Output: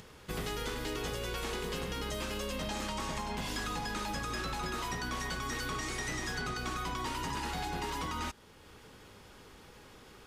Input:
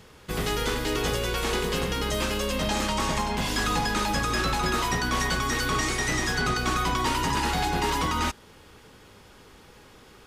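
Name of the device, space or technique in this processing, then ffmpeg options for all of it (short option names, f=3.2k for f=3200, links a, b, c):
upward and downward compression: -af "acompressor=mode=upward:threshold=-42dB:ratio=2.5,acompressor=threshold=-27dB:ratio=6,volume=-6dB"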